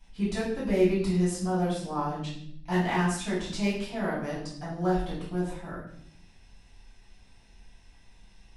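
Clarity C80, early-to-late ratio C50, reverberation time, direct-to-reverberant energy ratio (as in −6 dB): 7.5 dB, 3.0 dB, 0.70 s, −9.5 dB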